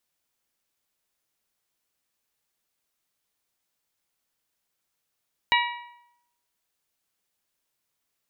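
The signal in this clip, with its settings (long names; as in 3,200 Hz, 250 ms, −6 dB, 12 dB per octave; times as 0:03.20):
struck metal bell, lowest mode 960 Hz, modes 5, decay 0.80 s, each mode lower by 1.5 dB, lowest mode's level −19 dB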